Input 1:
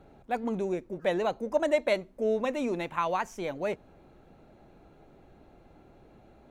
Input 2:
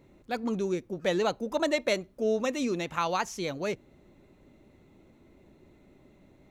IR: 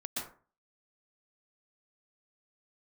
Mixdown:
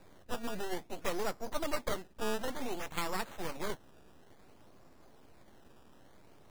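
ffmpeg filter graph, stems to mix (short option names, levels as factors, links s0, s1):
-filter_complex "[0:a]acompressor=threshold=0.0224:ratio=2.5,aeval=exprs='abs(val(0))':c=same,flanger=delay=9.5:depth=5.6:regen=-38:speed=0.65:shape=triangular,volume=1.19[s0];[1:a]volume=0.299[s1];[s0][s1]amix=inputs=2:normalize=0,acrusher=samples=14:mix=1:aa=0.000001:lfo=1:lforange=14:lforate=0.56"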